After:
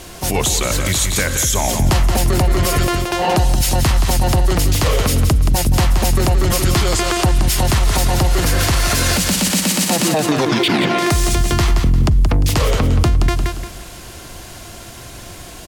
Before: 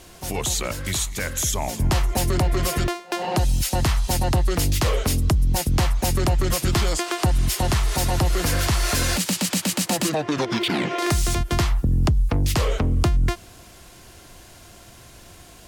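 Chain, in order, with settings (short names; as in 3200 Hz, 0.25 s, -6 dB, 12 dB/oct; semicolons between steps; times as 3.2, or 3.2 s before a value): feedback echo 0.175 s, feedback 34%, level -8.5 dB; maximiser +16.5 dB; gain -6 dB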